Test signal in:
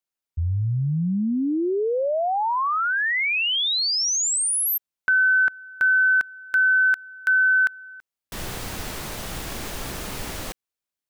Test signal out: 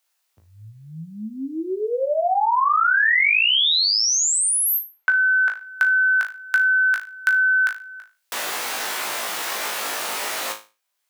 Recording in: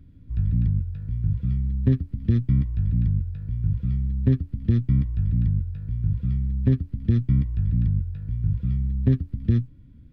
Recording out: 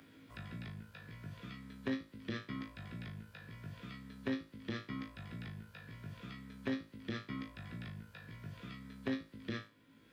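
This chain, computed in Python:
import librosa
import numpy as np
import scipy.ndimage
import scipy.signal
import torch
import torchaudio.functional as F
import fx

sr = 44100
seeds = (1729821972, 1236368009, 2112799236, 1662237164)

y = scipy.signal.sosfilt(scipy.signal.butter(2, 700.0, 'highpass', fs=sr, output='sos'), x)
y = fx.room_flutter(y, sr, wall_m=3.2, rt60_s=0.28)
y = fx.band_squash(y, sr, depth_pct=40)
y = y * 10.0 ** (3.5 / 20.0)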